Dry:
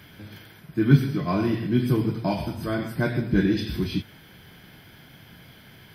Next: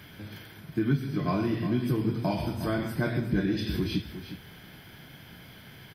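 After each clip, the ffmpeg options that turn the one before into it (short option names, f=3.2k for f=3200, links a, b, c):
-af "acompressor=threshold=-25dB:ratio=3,aecho=1:1:360:0.266"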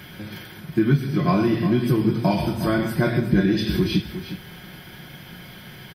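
-af "aecho=1:1:5.5:0.38,volume=7dB"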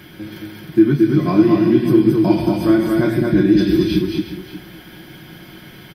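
-filter_complex "[0:a]equalizer=f=320:w=4:g=12,asplit=2[a][b];[b]aecho=0:1:223:0.708[c];[a][c]amix=inputs=2:normalize=0,volume=-1dB"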